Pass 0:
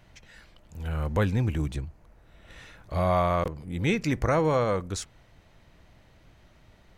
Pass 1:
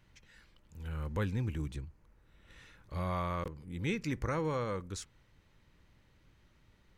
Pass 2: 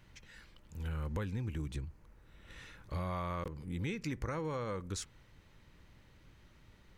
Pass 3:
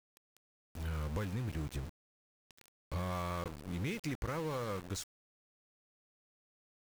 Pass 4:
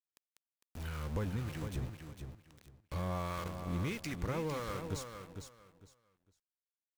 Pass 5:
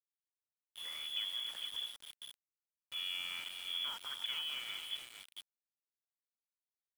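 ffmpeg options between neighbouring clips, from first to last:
ffmpeg -i in.wav -af "equalizer=frequency=680:width=4:gain=-11.5,volume=-8.5dB" out.wav
ffmpeg -i in.wav -af "acompressor=threshold=-39dB:ratio=6,volume=4.5dB" out.wav
ffmpeg -i in.wav -af "aeval=exprs='val(0)*gte(abs(val(0)),0.0075)':channel_layout=same" out.wav
ffmpeg -i in.wav -filter_complex "[0:a]acrossover=split=990[link_01][link_02];[link_01]aeval=exprs='val(0)*(1-0.5/2+0.5/2*cos(2*PI*1.6*n/s))':channel_layout=same[link_03];[link_02]aeval=exprs='val(0)*(1-0.5/2-0.5/2*cos(2*PI*1.6*n/s))':channel_layout=same[link_04];[link_03][link_04]amix=inputs=2:normalize=0,aecho=1:1:454|908|1362:0.422|0.0928|0.0204,volume=2dB" out.wav
ffmpeg -i in.wav -filter_complex "[0:a]lowpass=frequency=3000:width_type=q:width=0.5098,lowpass=frequency=3000:width_type=q:width=0.6013,lowpass=frequency=3000:width_type=q:width=0.9,lowpass=frequency=3000:width_type=q:width=2.563,afreqshift=-3500,asplit=2[link_01][link_02];[link_02]adelay=277,lowpass=frequency=2100:poles=1,volume=-8.5dB,asplit=2[link_03][link_04];[link_04]adelay=277,lowpass=frequency=2100:poles=1,volume=0.26,asplit=2[link_05][link_06];[link_06]adelay=277,lowpass=frequency=2100:poles=1,volume=0.26[link_07];[link_01][link_03][link_05][link_07]amix=inputs=4:normalize=0,aeval=exprs='val(0)*gte(abs(val(0)),0.00708)':channel_layout=same,volume=-4dB" out.wav

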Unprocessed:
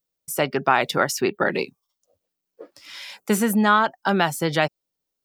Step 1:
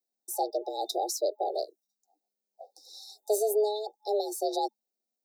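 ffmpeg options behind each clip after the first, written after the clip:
ffmpeg -i in.wav -af "afftfilt=real='re*(1-between(b*sr/4096,640,3400))':imag='im*(1-between(b*sr/4096,640,3400))':win_size=4096:overlap=0.75,afreqshift=210,volume=-6dB" out.wav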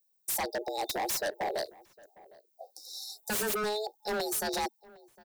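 ffmpeg -i in.wav -filter_complex "[0:a]aemphasis=mode=production:type=50kf,aeval=exprs='0.0501*(abs(mod(val(0)/0.0501+3,4)-2)-1)':channel_layout=same,asplit=2[link_01][link_02];[link_02]adelay=758,volume=-22dB,highshelf=frequency=4000:gain=-17.1[link_03];[link_01][link_03]amix=inputs=2:normalize=0" out.wav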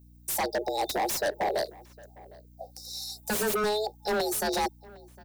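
ffmpeg -i in.wav -filter_complex "[0:a]acrossover=split=120|1000[link_01][link_02][link_03];[link_03]asoftclip=type=tanh:threshold=-32dB[link_04];[link_01][link_02][link_04]amix=inputs=3:normalize=0,aeval=exprs='val(0)+0.00126*(sin(2*PI*60*n/s)+sin(2*PI*2*60*n/s)/2+sin(2*PI*3*60*n/s)/3+sin(2*PI*4*60*n/s)/4+sin(2*PI*5*60*n/s)/5)':channel_layout=same,volume=5dB" out.wav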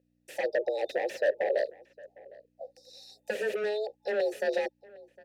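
ffmpeg -i in.wav -filter_complex "[0:a]asplit=3[link_01][link_02][link_03];[link_01]bandpass=frequency=530:width_type=q:width=8,volume=0dB[link_04];[link_02]bandpass=frequency=1840:width_type=q:width=8,volume=-6dB[link_05];[link_03]bandpass=frequency=2480:width_type=q:width=8,volume=-9dB[link_06];[link_04][link_05][link_06]amix=inputs=3:normalize=0,volume=9dB" out.wav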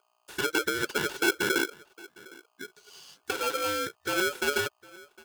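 ffmpeg -i in.wav -af "aeval=exprs='val(0)*sgn(sin(2*PI*930*n/s))':channel_layout=same,volume=1dB" out.wav

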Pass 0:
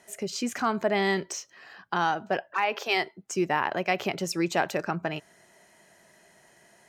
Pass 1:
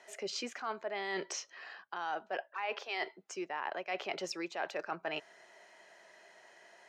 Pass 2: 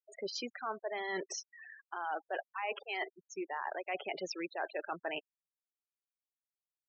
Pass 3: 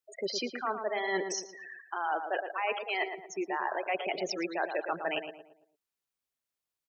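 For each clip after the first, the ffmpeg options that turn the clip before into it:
ffmpeg -i in.wav -filter_complex "[0:a]acrossover=split=360 6000:gain=0.0891 1 0.0891[link_01][link_02][link_03];[link_01][link_02][link_03]amix=inputs=3:normalize=0,areverse,acompressor=threshold=-35dB:ratio=10,areverse,volume=1dB" out.wav
ffmpeg -i in.wav -af "volume=27dB,asoftclip=hard,volume=-27dB,afftfilt=real='re*gte(hypot(re,im),0.0141)':imag='im*gte(hypot(re,im),0.0141)':win_size=1024:overlap=0.75" out.wav
ffmpeg -i in.wav -filter_complex "[0:a]asplit=2[link_01][link_02];[link_02]adelay=113,lowpass=frequency=1600:poles=1,volume=-6.5dB,asplit=2[link_03][link_04];[link_04]adelay=113,lowpass=frequency=1600:poles=1,volume=0.42,asplit=2[link_05][link_06];[link_06]adelay=113,lowpass=frequency=1600:poles=1,volume=0.42,asplit=2[link_07][link_08];[link_08]adelay=113,lowpass=frequency=1600:poles=1,volume=0.42,asplit=2[link_09][link_10];[link_10]adelay=113,lowpass=frequency=1600:poles=1,volume=0.42[link_11];[link_01][link_03][link_05][link_07][link_09][link_11]amix=inputs=6:normalize=0,volume=5.5dB" out.wav

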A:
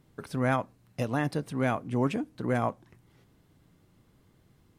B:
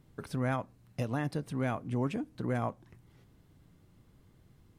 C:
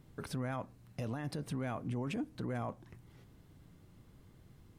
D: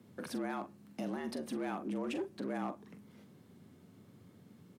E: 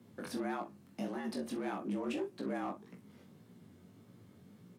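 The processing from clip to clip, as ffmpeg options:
ffmpeg -i in.wav -af "lowshelf=frequency=130:gain=7,acompressor=threshold=-33dB:ratio=1.5,volume=-2dB" out.wav
ffmpeg -i in.wav -af "alimiter=level_in=8.5dB:limit=-24dB:level=0:latency=1:release=21,volume=-8.5dB,volume=2dB" out.wav
ffmpeg -i in.wav -filter_complex "[0:a]asplit=2[link_01][link_02];[link_02]adelay=43,volume=-10dB[link_03];[link_01][link_03]amix=inputs=2:normalize=0,volume=32dB,asoftclip=hard,volume=-32dB,afreqshift=86" out.wav
ffmpeg -i in.wav -af "flanger=delay=16.5:depth=5.4:speed=1.7,volume=3dB" out.wav

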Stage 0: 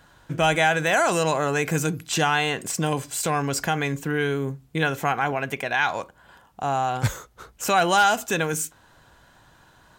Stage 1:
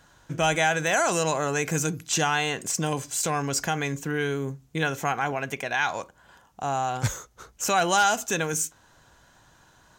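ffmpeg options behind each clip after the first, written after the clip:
ffmpeg -i in.wav -af "equalizer=frequency=6300:width=2.4:gain=8,volume=-3dB" out.wav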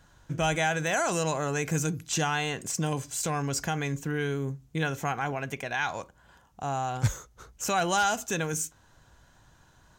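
ffmpeg -i in.wav -af "lowshelf=frequency=150:gain=9.5,volume=-4.5dB" out.wav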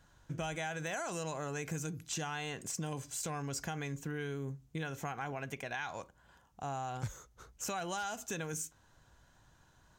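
ffmpeg -i in.wav -af "acompressor=threshold=-29dB:ratio=6,volume=-6dB" out.wav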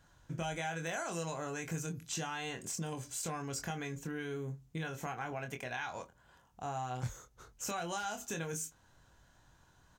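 ffmpeg -i in.wav -filter_complex "[0:a]asplit=2[link_01][link_02];[link_02]adelay=24,volume=-6dB[link_03];[link_01][link_03]amix=inputs=2:normalize=0,volume=-1dB" out.wav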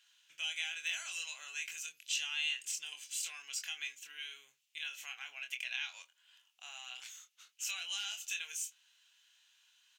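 ffmpeg -i in.wav -af "highpass=frequency=2800:width_type=q:width=4.1" out.wav

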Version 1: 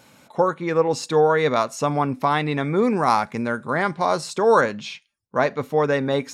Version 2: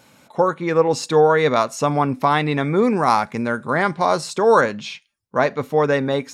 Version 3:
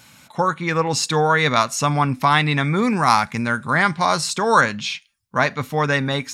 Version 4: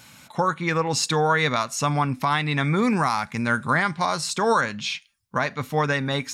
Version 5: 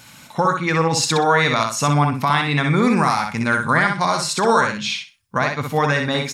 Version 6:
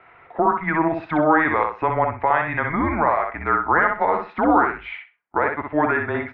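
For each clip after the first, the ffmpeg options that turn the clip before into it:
ffmpeg -i in.wav -af "dynaudnorm=framelen=110:gausssize=7:maxgain=3.5dB" out.wav
ffmpeg -i in.wav -af "equalizer=frequency=450:width=0.69:gain=-14,volume=7dB" out.wav
ffmpeg -i in.wav -af "alimiter=limit=-11dB:level=0:latency=1:release=469" out.wav
ffmpeg -i in.wav -af "aecho=1:1:62|124|186:0.596|0.131|0.0288,volume=3.5dB" out.wav
ffmpeg -i in.wav -af "highpass=frequency=340:width_type=q:width=0.5412,highpass=frequency=340:width_type=q:width=1.307,lowpass=frequency=2300:width_type=q:width=0.5176,lowpass=frequency=2300:width_type=q:width=0.7071,lowpass=frequency=2300:width_type=q:width=1.932,afreqshift=-160" out.wav

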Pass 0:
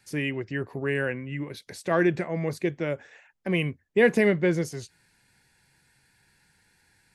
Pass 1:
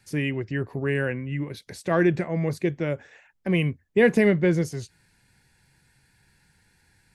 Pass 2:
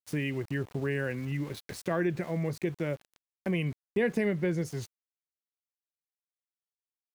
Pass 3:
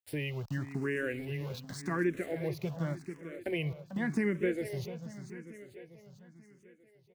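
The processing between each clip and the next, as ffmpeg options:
ffmpeg -i in.wav -af "lowshelf=frequency=190:gain=8" out.wav
ffmpeg -i in.wav -af "aeval=exprs='val(0)*gte(abs(val(0)),0.00841)':channel_layout=same,acompressor=threshold=-32dB:ratio=2" out.wav
ffmpeg -i in.wav -filter_complex "[0:a]aecho=1:1:444|888|1332|1776|2220|2664|3108:0.282|0.163|0.0948|0.055|0.0319|0.0185|0.0107,asplit=2[link_01][link_02];[link_02]afreqshift=0.88[link_03];[link_01][link_03]amix=inputs=2:normalize=1" out.wav

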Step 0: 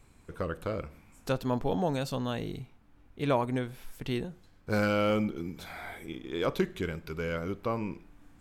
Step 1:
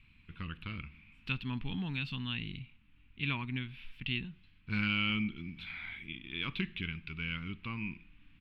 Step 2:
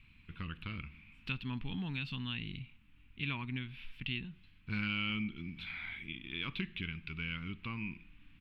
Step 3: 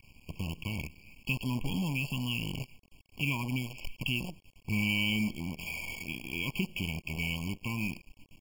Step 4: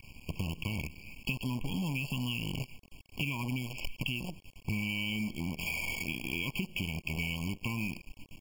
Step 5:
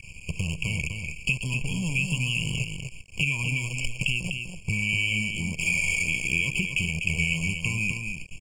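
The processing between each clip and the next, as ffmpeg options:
ffmpeg -i in.wav -af "firequalizer=gain_entry='entry(210,0);entry(550,-29);entry(980,-8);entry(1600,-3);entry(2600,14);entry(6400,-24)':delay=0.05:min_phase=1,volume=-3.5dB" out.wav
ffmpeg -i in.wav -af "acompressor=threshold=-41dB:ratio=1.5,volume=1dB" out.wav
ffmpeg -i in.wav -af "acrusher=bits=8:dc=4:mix=0:aa=0.000001,afftfilt=real='re*eq(mod(floor(b*sr/1024/1100),2),0)':imag='im*eq(mod(floor(b*sr/1024/1100),2),0)':win_size=1024:overlap=0.75,volume=6.5dB" out.wav
ffmpeg -i in.wav -af "acompressor=threshold=-37dB:ratio=6,volume=6dB" out.wav
ffmpeg -i in.wav -af "firequalizer=gain_entry='entry(170,0);entry(250,-12);entry(470,-2);entry(800,-12);entry(2500,6);entry(3600,-8);entry(8200,12);entry(12000,-15)':delay=0.05:min_phase=1,aecho=1:1:248:0.501,volume=6.5dB" out.wav

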